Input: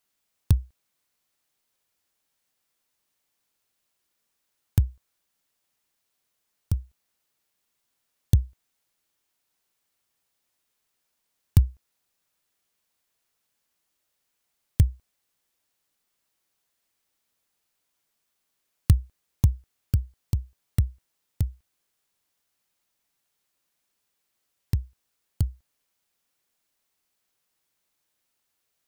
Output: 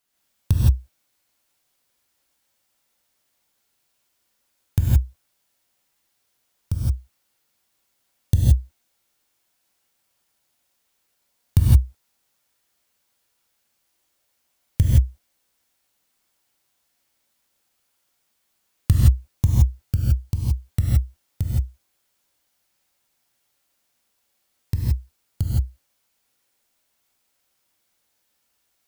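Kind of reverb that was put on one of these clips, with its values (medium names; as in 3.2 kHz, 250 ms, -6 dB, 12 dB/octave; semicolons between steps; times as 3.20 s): gated-style reverb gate 190 ms rising, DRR -5 dB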